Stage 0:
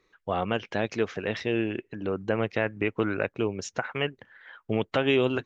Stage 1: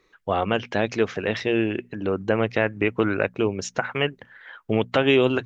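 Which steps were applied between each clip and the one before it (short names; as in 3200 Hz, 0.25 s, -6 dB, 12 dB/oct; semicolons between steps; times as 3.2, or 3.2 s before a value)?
notches 60/120/180/240 Hz; gain +5 dB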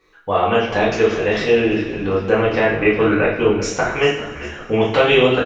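frequency-shifting echo 0.397 s, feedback 45%, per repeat -67 Hz, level -14 dB; reverb, pre-delay 3 ms, DRR -7.5 dB; gain -1 dB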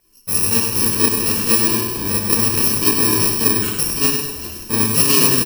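FFT order left unsorted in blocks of 64 samples; on a send: feedback echo 0.101 s, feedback 43%, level -6.5 dB; on the sum: gain -1 dB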